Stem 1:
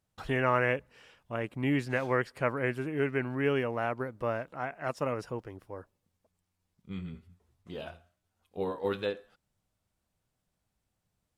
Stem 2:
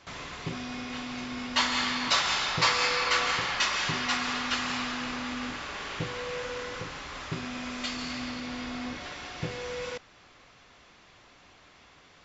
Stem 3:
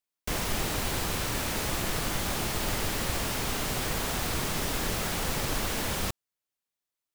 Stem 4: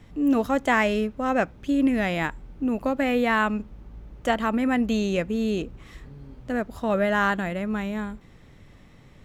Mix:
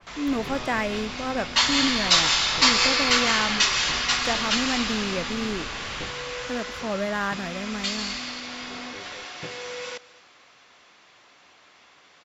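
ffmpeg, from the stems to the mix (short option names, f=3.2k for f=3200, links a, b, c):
-filter_complex "[0:a]adelay=100,volume=-14.5dB[a];[1:a]highpass=f=460:p=1,adynamicequalizer=threshold=0.00794:dfrequency=2700:dqfactor=0.7:tfrequency=2700:tqfactor=0.7:attack=5:release=100:ratio=0.375:range=3.5:mode=boostabove:tftype=highshelf,volume=2.5dB,asplit=2[b][c];[c]volume=-21dB[d];[2:a]lowpass=f=4.7k:w=0.5412,lowpass=f=4.7k:w=1.3066,volume=-8.5dB[e];[3:a]agate=range=-33dB:threshold=-45dB:ratio=3:detection=peak,volume=-5dB[f];[d]aecho=0:1:224:1[g];[a][b][e][f][g]amix=inputs=5:normalize=0"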